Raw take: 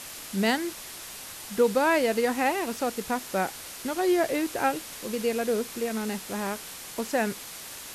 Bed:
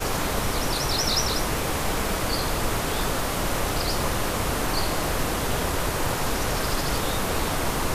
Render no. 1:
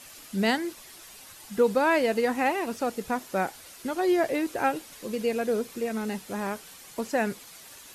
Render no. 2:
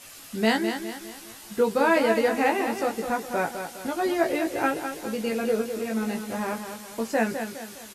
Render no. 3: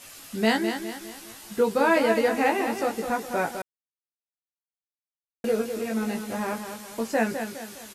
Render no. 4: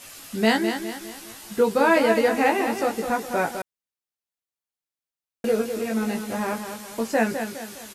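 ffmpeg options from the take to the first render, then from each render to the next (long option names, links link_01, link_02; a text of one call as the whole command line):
ffmpeg -i in.wav -af "afftdn=noise_reduction=9:noise_floor=-41" out.wav
ffmpeg -i in.wav -filter_complex "[0:a]asplit=2[link_01][link_02];[link_02]adelay=18,volume=-3dB[link_03];[link_01][link_03]amix=inputs=2:normalize=0,aecho=1:1:206|412|618|824|1030:0.398|0.171|0.0736|0.0317|0.0136" out.wav
ffmpeg -i in.wav -filter_complex "[0:a]asplit=3[link_01][link_02][link_03];[link_01]atrim=end=3.62,asetpts=PTS-STARTPTS,afade=type=out:start_time=3.616:duration=0.004:curve=hsin[link_04];[link_02]atrim=start=3.62:end=5.44,asetpts=PTS-STARTPTS,volume=0[link_05];[link_03]atrim=start=5.44,asetpts=PTS-STARTPTS,afade=type=in:duration=0.004:curve=hsin[link_06];[link_04][link_05][link_06]concat=n=3:v=0:a=1" out.wav
ffmpeg -i in.wav -af "volume=2.5dB" out.wav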